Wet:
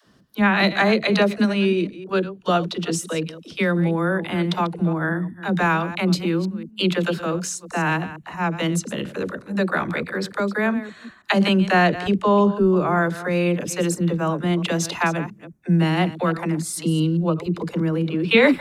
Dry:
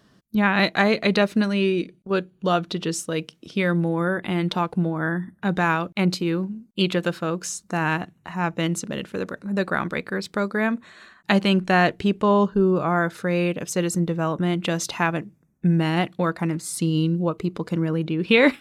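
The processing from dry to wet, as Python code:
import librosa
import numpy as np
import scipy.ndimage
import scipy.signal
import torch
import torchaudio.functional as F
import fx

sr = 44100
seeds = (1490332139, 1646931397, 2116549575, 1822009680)

y = fx.reverse_delay(x, sr, ms=170, wet_db=-14.0)
y = fx.dispersion(y, sr, late='lows', ms=64.0, hz=320.0)
y = F.gain(torch.from_numpy(y), 1.5).numpy()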